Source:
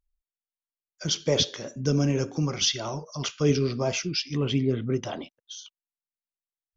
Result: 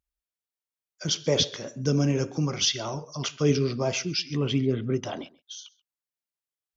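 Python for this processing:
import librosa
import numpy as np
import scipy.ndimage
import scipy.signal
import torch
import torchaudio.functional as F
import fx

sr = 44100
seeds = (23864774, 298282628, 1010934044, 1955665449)

y = scipy.signal.sosfilt(scipy.signal.butter(2, 60.0, 'highpass', fs=sr, output='sos'), x)
y = y + 10.0 ** (-22.5 / 20.0) * np.pad(y, (int(133 * sr / 1000.0), 0))[:len(y)]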